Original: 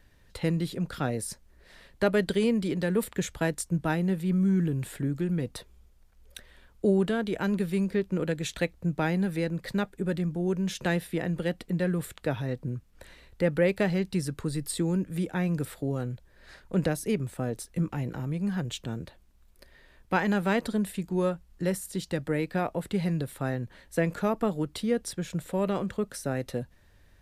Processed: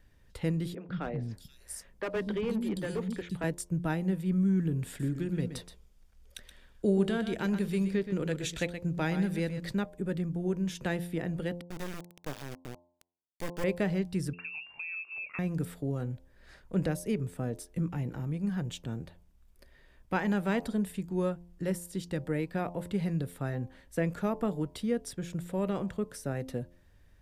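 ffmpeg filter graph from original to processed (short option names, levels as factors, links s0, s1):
-filter_complex "[0:a]asettb=1/sr,asplit=3[s0][s1][s2];[s0]atrim=end=0.754[s3];[s1]atrim=start=0.75:end=3.44,asetpts=PTS-STARTPTS,afade=t=in:d=0.004:c=qsin,afade=t=out:st=2.686:d=0.004:c=qsin,acrossover=split=250|3600[s4][s5][s6];[s4]adelay=130[s7];[s6]adelay=480[s8];[s7][s5][s8]amix=inputs=3:normalize=0,atrim=end_sample=118629,asoftclip=type=hard:threshold=0.0668[s9];[s2]atrim=start=3.436[s10];[s3][s9]acrossfade=d=0.004:c1=hsin:c2=qsin[s11];[s11][s10]acrossfade=d=0.004:c1=qsin:c2=hsin,asettb=1/sr,asplit=3[s12][s13][s14];[s12]atrim=end=4.874[s15];[s13]atrim=start=4.87:end=9.75,asetpts=PTS-STARTPTS,afade=t=in:d=0.004:c=qsin,afade=t=out:st=4.876:d=0.004:c=qsin,equalizer=f=4900:w=0.51:g=5.5,aecho=1:1:124:0.316,atrim=end_sample=215208[s16];[s14]atrim=start=9.746[s17];[s15][s16]acrossfade=d=0.004:c1=hsin:c2=qsin[s18];[s18][s17]acrossfade=d=0.004:c1=qsin:c2=hsin,asettb=1/sr,asplit=3[s19][s20][s21];[s19]atrim=end=11.614[s22];[s20]atrim=start=11.61:end=13.64,asetpts=PTS-STARTPTS,afade=t=in:d=0.004:c=qsin,afade=t=out:st=2.026:d=0.004:c=qsin,lowpass=7800,lowshelf=f=380:g=-9,acrusher=bits=3:dc=4:mix=0:aa=0.000001[s23];[s21]atrim=start=13.636[s24];[s22][s23]acrossfade=d=0.004:c1=hsin:c2=qsin[s25];[s25][s24]acrossfade=d=0.004:c1=qsin:c2=hsin,asettb=1/sr,asplit=3[s26][s27][s28];[s26]atrim=end=14.334[s29];[s27]atrim=start=14.33:end=15.39,asetpts=PTS-STARTPTS,afade=t=in:d=0.004:c=qsin,afade=t=out:st=1.056:d=0.004:c=qsin,lowpass=f=2400:t=q:w=0.5098,lowpass=f=2400:t=q:w=0.6013,lowpass=f=2400:t=q:w=0.9,lowpass=f=2400:t=q:w=2.563,afreqshift=-2800,acompressor=threshold=0.0251:ratio=3:attack=3.2:release=140:knee=1:detection=peak[s30];[s28]atrim=start=15.386[s31];[s29][s30]acrossfade=d=0.004:c1=hsin:c2=qsin[s32];[s32][s31]acrossfade=d=0.004:c1=qsin:c2=hsin,lowshelf=f=320:g=4.5,bandreject=f=4100:w=16,bandreject=f=87.23:t=h:w=4,bandreject=f=174.46:t=h:w=4,bandreject=f=261.69:t=h:w=4,bandreject=f=348.92:t=h:w=4,bandreject=f=436.15:t=h:w=4,bandreject=f=523.38:t=h:w=4,bandreject=f=610.61:t=h:w=4,bandreject=f=697.84:t=h:w=4,bandreject=f=785.07:t=h:w=4,bandreject=f=872.3:t=h:w=4,bandreject=f=959.53:t=h:w=4,bandreject=f=1046.76:t=h:w=4,volume=0.531"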